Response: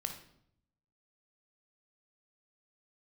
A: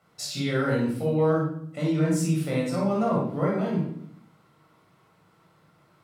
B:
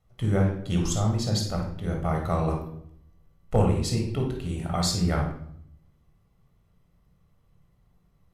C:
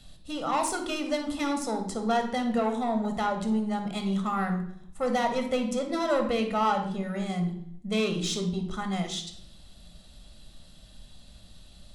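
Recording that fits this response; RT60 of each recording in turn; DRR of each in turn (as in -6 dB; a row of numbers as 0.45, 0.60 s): C; 0.70, 0.70, 0.70 s; -5.0, 1.0, 5.0 dB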